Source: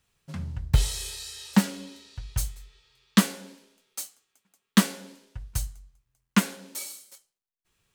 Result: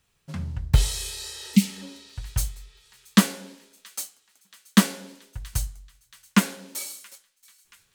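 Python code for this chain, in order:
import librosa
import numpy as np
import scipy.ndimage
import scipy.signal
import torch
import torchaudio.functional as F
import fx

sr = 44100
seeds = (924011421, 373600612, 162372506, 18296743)

y = fx.echo_wet_highpass(x, sr, ms=678, feedback_pct=61, hz=1700.0, wet_db=-23)
y = fx.spec_repair(y, sr, seeds[0], start_s=1.19, length_s=0.61, low_hz=260.0, high_hz=2000.0, source='before')
y = F.gain(torch.from_numpy(y), 2.5).numpy()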